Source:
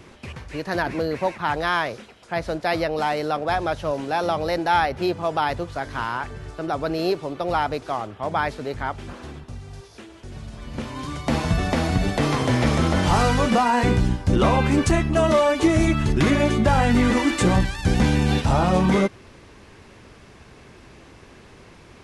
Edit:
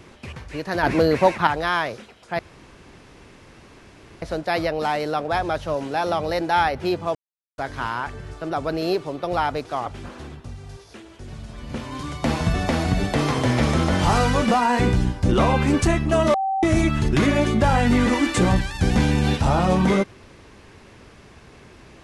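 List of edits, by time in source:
0:00.83–0:01.47: clip gain +7 dB
0:02.39: splice in room tone 1.83 s
0:05.32–0:05.75: silence
0:08.03–0:08.90: remove
0:15.38–0:15.67: beep over 773 Hz −20 dBFS

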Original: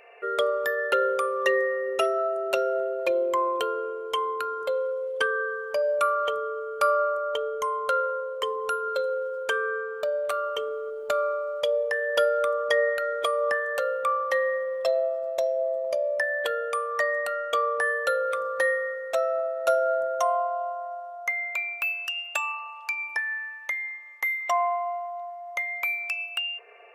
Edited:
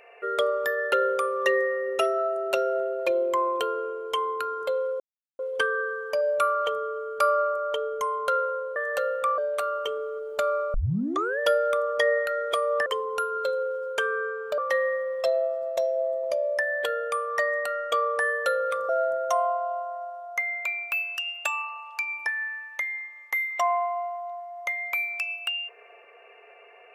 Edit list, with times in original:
0:05.00: splice in silence 0.39 s
0:08.37–0:10.09: swap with 0:13.57–0:14.19
0:11.45: tape start 0.65 s
0:18.50–0:19.79: remove

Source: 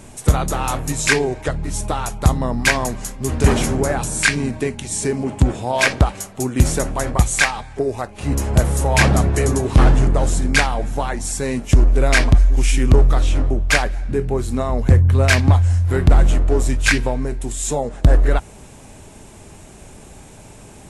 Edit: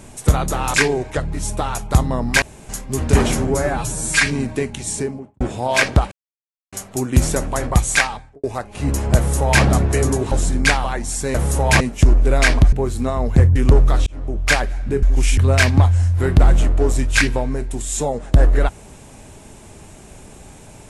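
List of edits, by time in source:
0:00.74–0:01.05: remove
0:02.73–0:03.00: fill with room tone
0:03.78–0:04.31: time-stretch 1.5×
0:04.90–0:05.45: fade out and dull
0:06.16: splice in silence 0.61 s
0:07.49–0:07.87: fade out and dull
0:08.60–0:09.06: duplicate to 0:11.51
0:09.75–0:10.21: remove
0:10.74–0:11.01: remove
0:12.43–0:12.78: swap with 0:14.25–0:15.08
0:13.29–0:13.74: fade in

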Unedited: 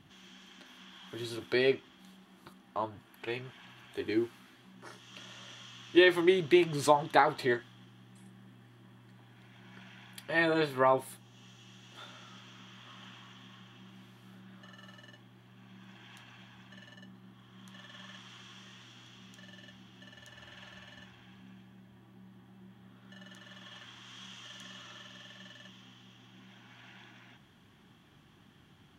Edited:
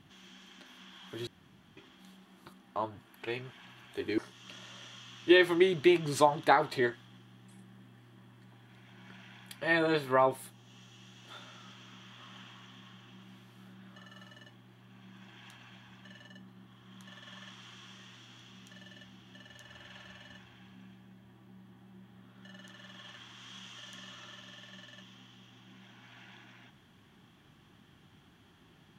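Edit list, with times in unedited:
0:01.27–0:01.77: fill with room tone
0:04.18–0:04.85: remove

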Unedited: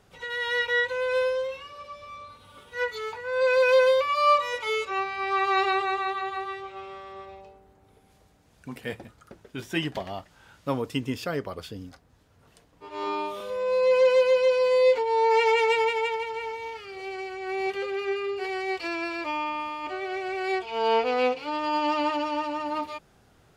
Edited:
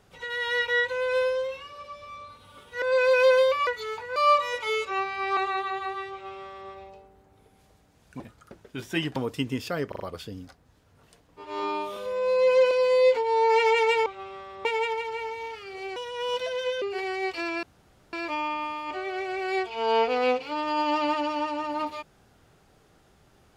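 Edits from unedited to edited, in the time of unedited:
0:02.82–0:03.31: move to 0:04.16
0:05.37–0:05.88: remove
0:06.63–0:07.22: duplicate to 0:15.87
0:08.71–0:09.00: remove
0:09.96–0:10.72: remove
0:11.44: stutter 0.04 s, 4 plays
0:14.15–0:14.52: remove
0:17.18–0:18.28: play speed 128%
0:19.09: splice in room tone 0.50 s

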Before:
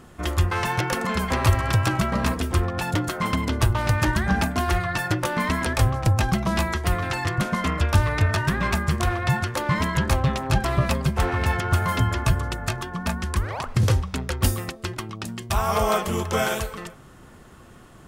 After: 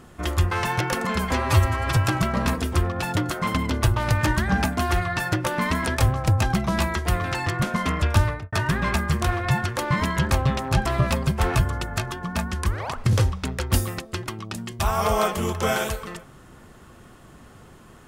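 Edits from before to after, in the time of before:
0:01.32–0:01.75: time-stretch 1.5×
0:07.99–0:08.31: fade out and dull
0:11.34–0:12.26: remove

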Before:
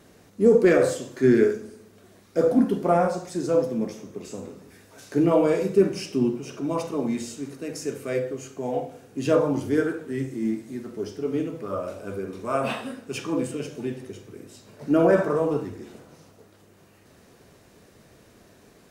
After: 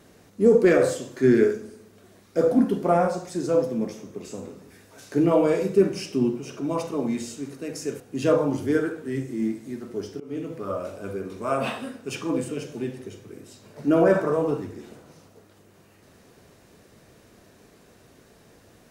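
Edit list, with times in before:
0:08.00–0:09.03: remove
0:11.23–0:11.54: fade in, from −22.5 dB

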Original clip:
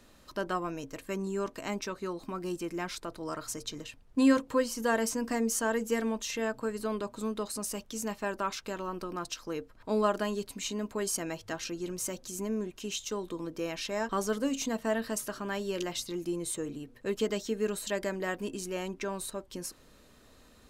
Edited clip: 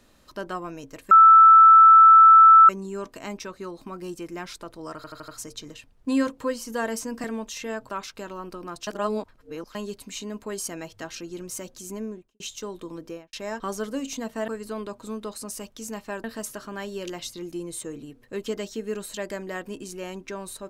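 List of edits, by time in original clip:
0:01.11: insert tone 1,320 Hz −8 dBFS 1.58 s
0:03.38: stutter 0.08 s, 5 plays
0:05.34–0:05.97: remove
0:06.62–0:08.38: move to 0:14.97
0:09.36–0:10.24: reverse
0:12.47–0:12.89: fade out and dull
0:13.53–0:13.82: fade out and dull

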